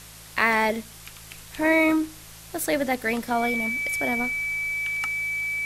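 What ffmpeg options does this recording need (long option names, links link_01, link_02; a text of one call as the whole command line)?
ffmpeg -i in.wav -af "adeclick=threshold=4,bandreject=frequency=54:width_type=h:width=4,bandreject=frequency=108:width_type=h:width=4,bandreject=frequency=162:width_type=h:width=4,bandreject=frequency=2300:width=30,afwtdn=0.0063" out.wav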